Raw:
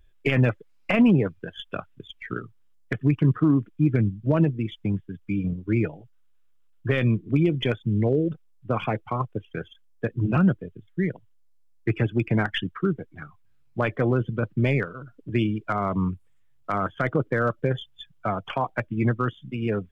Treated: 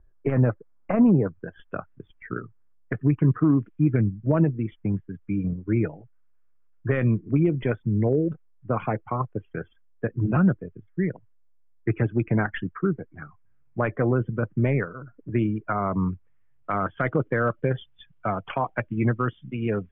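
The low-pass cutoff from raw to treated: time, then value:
low-pass 24 dB/octave
1.18 s 1.4 kHz
1.60 s 1.8 kHz
2.99 s 1.8 kHz
3.68 s 2.6 kHz
4.12 s 2 kHz
15.97 s 2 kHz
16.95 s 2.8 kHz

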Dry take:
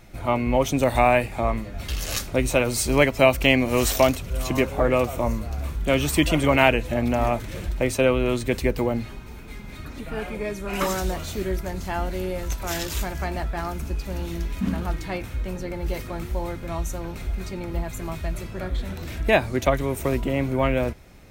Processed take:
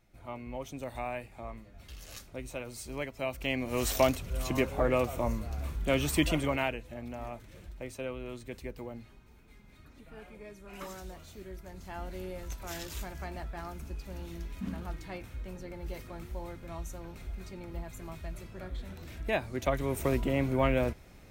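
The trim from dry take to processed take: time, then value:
3.19 s -19 dB
3.99 s -7 dB
6.29 s -7 dB
6.84 s -18.5 dB
11.51 s -18.5 dB
12.15 s -12 dB
19.48 s -12 dB
19.97 s -5 dB

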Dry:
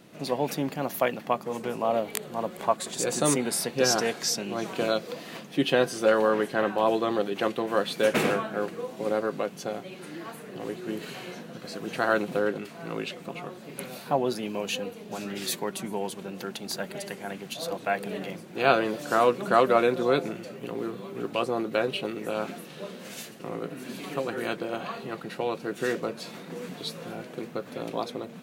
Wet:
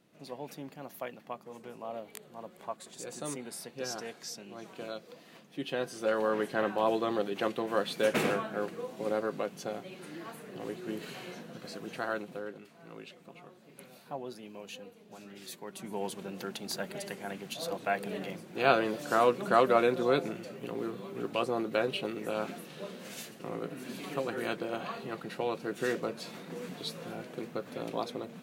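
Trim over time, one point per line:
5.42 s -14.5 dB
6.49 s -4.5 dB
11.66 s -4.5 dB
12.45 s -14.5 dB
15.58 s -14.5 dB
16.04 s -3.5 dB

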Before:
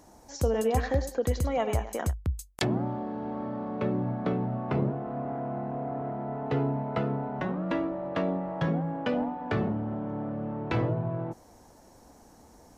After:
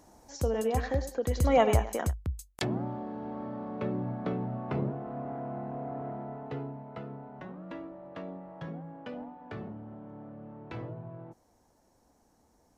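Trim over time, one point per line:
1.30 s -3 dB
1.54 s +6.5 dB
2.28 s -4 dB
6.15 s -4 dB
6.77 s -12.5 dB

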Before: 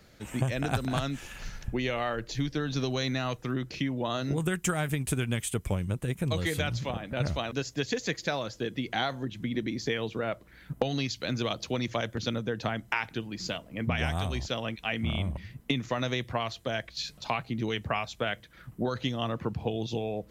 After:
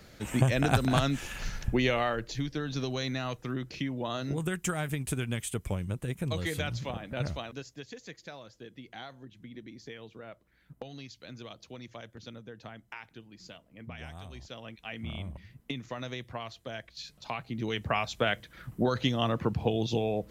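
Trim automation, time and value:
1.87 s +4 dB
2.43 s -3 dB
7.23 s -3 dB
7.87 s -14.5 dB
14.22 s -14.5 dB
15.05 s -8 dB
17.13 s -8 dB
18.11 s +3 dB

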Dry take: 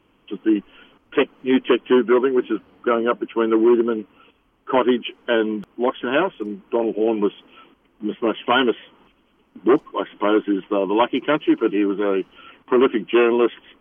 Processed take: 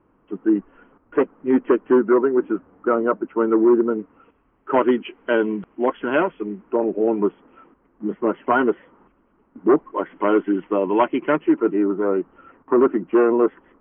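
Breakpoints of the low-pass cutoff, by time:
low-pass 24 dB/octave
3.87 s 1.6 kHz
4.95 s 2.4 kHz
6.42 s 2.4 kHz
6.83 s 1.7 kHz
9.74 s 1.7 kHz
10.32 s 2.3 kHz
11.18 s 2.3 kHz
11.87 s 1.5 kHz

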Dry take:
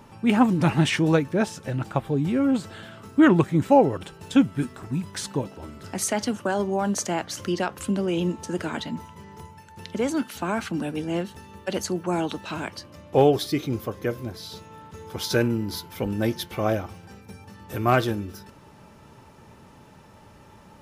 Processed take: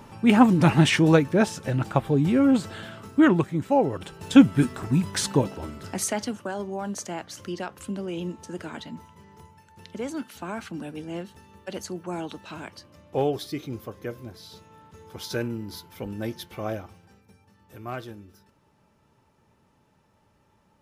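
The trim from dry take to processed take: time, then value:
2.90 s +2.5 dB
3.65 s -6.5 dB
4.43 s +5.5 dB
5.50 s +5.5 dB
6.52 s -7 dB
16.77 s -7 dB
17.42 s -14.5 dB

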